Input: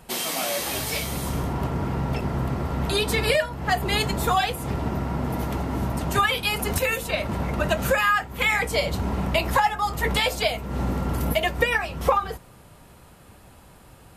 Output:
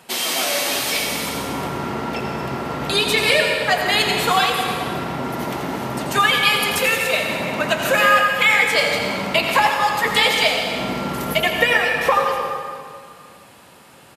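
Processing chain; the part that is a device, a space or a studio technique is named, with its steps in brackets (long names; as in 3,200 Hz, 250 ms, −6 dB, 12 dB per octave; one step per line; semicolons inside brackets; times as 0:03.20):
PA in a hall (high-pass filter 190 Hz 12 dB per octave; parametric band 3,200 Hz +6 dB 2.8 octaves; single-tap delay 85 ms −10.5 dB; convolution reverb RT60 2.1 s, pre-delay 91 ms, DRR 2.5 dB)
level +1 dB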